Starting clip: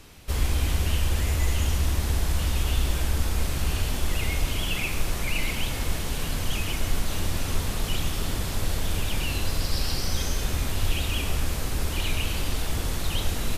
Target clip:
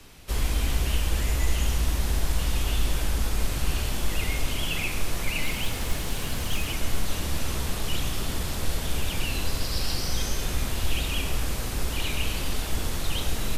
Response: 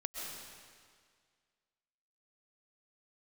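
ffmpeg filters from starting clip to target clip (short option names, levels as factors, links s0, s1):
-filter_complex "[0:a]afreqshift=-15,bandreject=f=77.2:t=h:w=4,bandreject=f=154.4:t=h:w=4,bandreject=f=231.6:t=h:w=4,bandreject=f=308.8:t=h:w=4,bandreject=f=386:t=h:w=4,bandreject=f=463.2:t=h:w=4,bandreject=f=540.4:t=h:w=4,bandreject=f=617.6:t=h:w=4,bandreject=f=694.8:t=h:w=4,bandreject=f=772:t=h:w=4,bandreject=f=849.2:t=h:w=4,bandreject=f=926.4:t=h:w=4,bandreject=f=1003.6:t=h:w=4,bandreject=f=1080.8:t=h:w=4,bandreject=f=1158:t=h:w=4,bandreject=f=1235.2:t=h:w=4,bandreject=f=1312.4:t=h:w=4,bandreject=f=1389.6:t=h:w=4,bandreject=f=1466.8:t=h:w=4,bandreject=f=1544:t=h:w=4,bandreject=f=1621.2:t=h:w=4,bandreject=f=1698.4:t=h:w=4,bandreject=f=1775.6:t=h:w=4,bandreject=f=1852.8:t=h:w=4,bandreject=f=1930:t=h:w=4,bandreject=f=2007.2:t=h:w=4,bandreject=f=2084.4:t=h:w=4,bandreject=f=2161.6:t=h:w=4,bandreject=f=2238.8:t=h:w=4,bandreject=f=2316:t=h:w=4,bandreject=f=2393.2:t=h:w=4,bandreject=f=2470.4:t=h:w=4,asettb=1/sr,asplit=3[s0][s1][s2];[s0]atrim=end=5.474[s3];[s1]atrim=start=5.47:end=6.73,asetpts=PTS-STARTPTS,afade=t=in:d=0.004:c=qsin,afade=t=out:st=1.256:d=0.004:c=qsin,acrusher=bits=7:mode=log:mix=0:aa=0.000001[s4];[s2]atrim=start=6.726[s5];[s3][s4]acrossfade=d=0.004:c1=hsin:c2=qsin[s6];[s6][s5]acrossfade=d=0.004:c1=qsin:c2=hsin"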